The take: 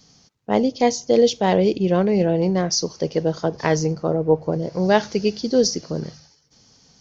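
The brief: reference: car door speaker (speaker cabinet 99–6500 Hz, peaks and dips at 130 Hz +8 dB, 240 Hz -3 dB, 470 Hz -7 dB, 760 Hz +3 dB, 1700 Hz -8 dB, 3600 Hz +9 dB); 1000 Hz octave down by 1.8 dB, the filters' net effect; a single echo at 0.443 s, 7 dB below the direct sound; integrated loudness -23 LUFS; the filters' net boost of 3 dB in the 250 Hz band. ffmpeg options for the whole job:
-af "highpass=99,equalizer=f=130:t=q:w=4:g=8,equalizer=f=240:t=q:w=4:g=-3,equalizer=f=470:t=q:w=4:g=-7,equalizer=f=760:t=q:w=4:g=3,equalizer=f=1.7k:t=q:w=4:g=-8,equalizer=f=3.6k:t=q:w=4:g=9,lowpass=f=6.5k:w=0.5412,lowpass=f=6.5k:w=1.3066,equalizer=f=250:t=o:g=6,equalizer=f=1k:t=o:g=-5.5,aecho=1:1:443:0.447,volume=-3.5dB"

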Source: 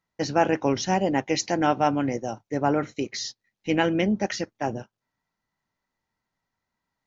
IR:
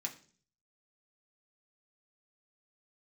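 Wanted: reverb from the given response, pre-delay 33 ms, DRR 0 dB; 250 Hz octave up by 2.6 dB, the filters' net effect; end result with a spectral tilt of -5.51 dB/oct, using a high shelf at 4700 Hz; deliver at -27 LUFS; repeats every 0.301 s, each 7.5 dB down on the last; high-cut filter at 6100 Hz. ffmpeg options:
-filter_complex "[0:a]lowpass=6.1k,equalizer=f=250:t=o:g=3.5,highshelf=f=4.7k:g=-5.5,aecho=1:1:301|602|903|1204|1505:0.422|0.177|0.0744|0.0312|0.0131,asplit=2[a][b];[1:a]atrim=start_sample=2205,adelay=33[c];[b][c]afir=irnorm=-1:irlink=0,volume=0.5dB[d];[a][d]amix=inputs=2:normalize=0,volume=-6dB"

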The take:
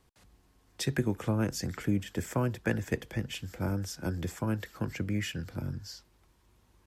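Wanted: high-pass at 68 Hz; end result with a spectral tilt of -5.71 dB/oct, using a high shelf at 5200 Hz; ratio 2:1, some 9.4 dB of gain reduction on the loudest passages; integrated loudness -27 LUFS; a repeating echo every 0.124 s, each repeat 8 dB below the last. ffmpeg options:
-af "highpass=68,highshelf=f=5.2k:g=-8.5,acompressor=threshold=-41dB:ratio=2,aecho=1:1:124|248|372|496|620:0.398|0.159|0.0637|0.0255|0.0102,volume=13.5dB"

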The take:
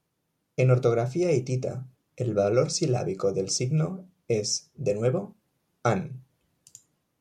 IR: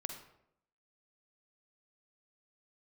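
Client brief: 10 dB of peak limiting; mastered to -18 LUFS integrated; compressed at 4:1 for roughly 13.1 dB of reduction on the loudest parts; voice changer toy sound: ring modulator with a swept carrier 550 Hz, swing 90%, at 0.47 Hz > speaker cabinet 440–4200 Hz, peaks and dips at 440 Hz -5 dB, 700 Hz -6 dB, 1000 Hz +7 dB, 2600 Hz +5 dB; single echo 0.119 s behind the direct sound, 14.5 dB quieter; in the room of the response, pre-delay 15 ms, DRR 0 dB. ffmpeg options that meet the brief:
-filter_complex "[0:a]acompressor=threshold=-33dB:ratio=4,alimiter=level_in=5dB:limit=-24dB:level=0:latency=1,volume=-5dB,aecho=1:1:119:0.188,asplit=2[a][b];[1:a]atrim=start_sample=2205,adelay=15[c];[b][c]afir=irnorm=-1:irlink=0,volume=1dB[d];[a][d]amix=inputs=2:normalize=0,aeval=exprs='val(0)*sin(2*PI*550*n/s+550*0.9/0.47*sin(2*PI*0.47*n/s))':c=same,highpass=440,equalizer=f=440:t=q:w=4:g=-5,equalizer=f=700:t=q:w=4:g=-6,equalizer=f=1k:t=q:w=4:g=7,equalizer=f=2.6k:t=q:w=4:g=5,lowpass=f=4.2k:w=0.5412,lowpass=f=4.2k:w=1.3066,volume=23dB"

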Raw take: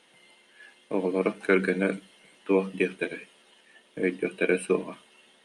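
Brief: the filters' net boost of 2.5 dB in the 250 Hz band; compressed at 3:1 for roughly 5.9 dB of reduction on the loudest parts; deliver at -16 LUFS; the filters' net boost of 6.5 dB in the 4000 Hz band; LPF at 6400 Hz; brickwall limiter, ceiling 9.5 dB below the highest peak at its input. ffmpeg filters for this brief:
-af "lowpass=6.4k,equalizer=f=250:t=o:g=3.5,equalizer=f=4k:t=o:g=9,acompressor=threshold=-24dB:ratio=3,volume=19dB,alimiter=limit=-3dB:level=0:latency=1"

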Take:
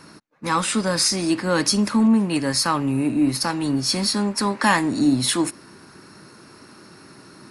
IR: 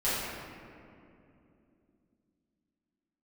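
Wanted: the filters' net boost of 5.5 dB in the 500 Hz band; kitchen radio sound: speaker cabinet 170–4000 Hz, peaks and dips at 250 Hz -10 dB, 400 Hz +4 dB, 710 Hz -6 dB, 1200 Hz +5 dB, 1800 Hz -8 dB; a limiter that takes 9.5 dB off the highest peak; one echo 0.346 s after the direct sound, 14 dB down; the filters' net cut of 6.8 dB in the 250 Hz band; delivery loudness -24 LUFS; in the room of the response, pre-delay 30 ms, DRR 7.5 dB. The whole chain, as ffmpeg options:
-filter_complex "[0:a]equalizer=f=250:t=o:g=-6.5,equalizer=f=500:t=o:g=8.5,alimiter=limit=-12.5dB:level=0:latency=1,aecho=1:1:346:0.2,asplit=2[a][b];[1:a]atrim=start_sample=2205,adelay=30[c];[b][c]afir=irnorm=-1:irlink=0,volume=-18.5dB[d];[a][d]amix=inputs=2:normalize=0,highpass=170,equalizer=f=250:t=q:w=4:g=-10,equalizer=f=400:t=q:w=4:g=4,equalizer=f=710:t=q:w=4:g=-6,equalizer=f=1.2k:t=q:w=4:g=5,equalizer=f=1.8k:t=q:w=4:g=-8,lowpass=f=4k:w=0.5412,lowpass=f=4k:w=1.3066,volume=0.5dB"

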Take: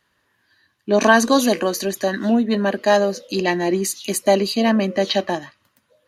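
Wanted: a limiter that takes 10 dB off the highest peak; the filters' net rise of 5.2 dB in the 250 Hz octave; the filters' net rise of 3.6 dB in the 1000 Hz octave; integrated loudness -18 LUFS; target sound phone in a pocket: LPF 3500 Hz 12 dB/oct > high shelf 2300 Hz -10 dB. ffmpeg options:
-af "equalizer=f=250:t=o:g=6,equalizer=f=1k:t=o:g=6,alimiter=limit=-8.5dB:level=0:latency=1,lowpass=3.5k,highshelf=f=2.3k:g=-10,volume=1.5dB"

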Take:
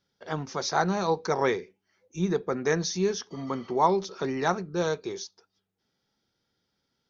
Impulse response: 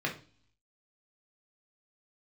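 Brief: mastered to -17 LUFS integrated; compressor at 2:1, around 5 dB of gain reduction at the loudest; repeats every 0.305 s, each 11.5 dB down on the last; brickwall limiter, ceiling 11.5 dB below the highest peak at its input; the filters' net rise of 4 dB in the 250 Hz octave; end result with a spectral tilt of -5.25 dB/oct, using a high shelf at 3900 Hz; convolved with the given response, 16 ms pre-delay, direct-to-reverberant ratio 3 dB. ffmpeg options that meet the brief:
-filter_complex "[0:a]equalizer=f=250:t=o:g=6,highshelf=f=3.9k:g=3.5,acompressor=threshold=-26dB:ratio=2,alimiter=limit=-23.5dB:level=0:latency=1,aecho=1:1:305|610|915:0.266|0.0718|0.0194,asplit=2[a][b];[1:a]atrim=start_sample=2205,adelay=16[c];[b][c]afir=irnorm=-1:irlink=0,volume=-10dB[d];[a][d]amix=inputs=2:normalize=0,volume=14dB"

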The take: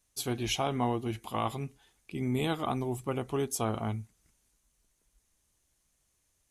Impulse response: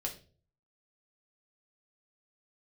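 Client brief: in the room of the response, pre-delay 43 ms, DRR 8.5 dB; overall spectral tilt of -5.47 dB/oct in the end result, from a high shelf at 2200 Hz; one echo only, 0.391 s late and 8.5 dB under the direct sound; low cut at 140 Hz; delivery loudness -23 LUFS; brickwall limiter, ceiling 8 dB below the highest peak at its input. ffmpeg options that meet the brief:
-filter_complex "[0:a]highpass=140,highshelf=f=2.2k:g=-6.5,alimiter=level_in=0.5dB:limit=-24dB:level=0:latency=1,volume=-0.5dB,aecho=1:1:391:0.376,asplit=2[a][b];[1:a]atrim=start_sample=2205,adelay=43[c];[b][c]afir=irnorm=-1:irlink=0,volume=-9.5dB[d];[a][d]amix=inputs=2:normalize=0,volume=13dB"

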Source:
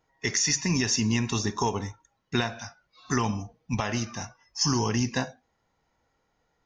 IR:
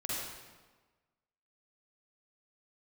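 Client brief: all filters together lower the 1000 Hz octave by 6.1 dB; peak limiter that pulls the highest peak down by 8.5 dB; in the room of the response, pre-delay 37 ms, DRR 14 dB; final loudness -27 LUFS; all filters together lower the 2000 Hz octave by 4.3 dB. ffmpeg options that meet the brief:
-filter_complex "[0:a]equalizer=f=1k:t=o:g=-6.5,equalizer=f=2k:t=o:g=-3.5,alimiter=limit=-21.5dB:level=0:latency=1,asplit=2[a][b];[1:a]atrim=start_sample=2205,adelay=37[c];[b][c]afir=irnorm=-1:irlink=0,volume=-18dB[d];[a][d]amix=inputs=2:normalize=0,volume=5.5dB"

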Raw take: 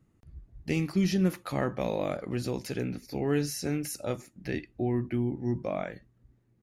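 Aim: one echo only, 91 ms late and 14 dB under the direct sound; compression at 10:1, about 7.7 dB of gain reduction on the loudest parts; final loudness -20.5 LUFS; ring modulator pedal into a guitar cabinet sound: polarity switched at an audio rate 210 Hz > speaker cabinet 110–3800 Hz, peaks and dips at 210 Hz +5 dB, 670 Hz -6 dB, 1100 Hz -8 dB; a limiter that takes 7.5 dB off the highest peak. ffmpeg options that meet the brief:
-af "acompressor=threshold=-29dB:ratio=10,alimiter=level_in=3.5dB:limit=-24dB:level=0:latency=1,volume=-3.5dB,aecho=1:1:91:0.2,aeval=exprs='val(0)*sgn(sin(2*PI*210*n/s))':c=same,highpass=110,equalizer=f=210:t=q:w=4:g=5,equalizer=f=670:t=q:w=4:g=-6,equalizer=f=1.1k:t=q:w=4:g=-8,lowpass=f=3.8k:w=0.5412,lowpass=f=3.8k:w=1.3066,volume=19.5dB"

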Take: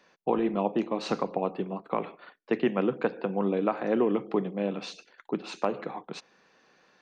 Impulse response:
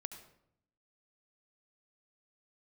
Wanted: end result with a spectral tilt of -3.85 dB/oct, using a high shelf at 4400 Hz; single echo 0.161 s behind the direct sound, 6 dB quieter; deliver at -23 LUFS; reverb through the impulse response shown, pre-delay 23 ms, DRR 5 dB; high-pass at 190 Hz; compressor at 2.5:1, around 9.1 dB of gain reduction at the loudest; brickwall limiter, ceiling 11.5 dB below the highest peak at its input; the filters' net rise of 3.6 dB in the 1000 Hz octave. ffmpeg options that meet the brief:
-filter_complex "[0:a]highpass=190,equalizer=f=1k:t=o:g=5,highshelf=f=4.4k:g=-5,acompressor=threshold=-34dB:ratio=2.5,alimiter=level_in=3.5dB:limit=-24dB:level=0:latency=1,volume=-3.5dB,aecho=1:1:161:0.501,asplit=2[a][b];[1:a]atrim=start_sample=2205,adelay=23[c];[b][c]afir=irnorm=-1:irlink=0,volume=-2dB[d];[a][d]amix=inputs=2:normalize=0,volume=15dB"

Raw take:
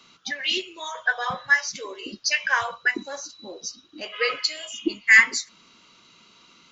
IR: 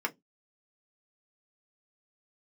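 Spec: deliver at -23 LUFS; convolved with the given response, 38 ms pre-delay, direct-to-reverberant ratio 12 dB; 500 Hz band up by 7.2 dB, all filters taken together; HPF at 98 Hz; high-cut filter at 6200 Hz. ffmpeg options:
-filter_complex "[0:a]highpass=98,lowpass=6.2k,equalizer=f=500:t=o:g=8.5,asplit=2[a][b];[1:a]atrim=start_sample=2205,adelay=38[c];[b][c]afir=irnorm=-1:irlink=0,volume=-18.5dB[d];[a][d]amix=inputs=2:normalize=0,volume=-1.5dB"

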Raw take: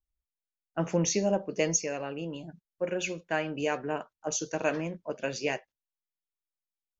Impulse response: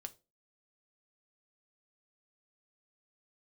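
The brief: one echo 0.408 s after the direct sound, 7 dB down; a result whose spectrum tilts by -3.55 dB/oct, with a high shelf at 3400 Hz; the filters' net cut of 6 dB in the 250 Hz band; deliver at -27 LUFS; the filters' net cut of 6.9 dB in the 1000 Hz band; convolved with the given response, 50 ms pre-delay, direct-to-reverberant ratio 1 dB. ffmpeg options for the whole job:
-filter_complex "[0:a]equalizer=f=250:t=o:g=-9,equalizer=f=1k:t=o:g=-9,highshelf=f=3.4k:g=-4.5,aecho=1:1:408:0.447,asplit=2[a][b];[1:a]atrim=start_sample=2205,adelay=50[c];[b][c]afir=irnorm=-1:irlink=0,volume=3.5dB[d];[a][d]amix=inputs=2:normalize=0,volume=5.5dB"

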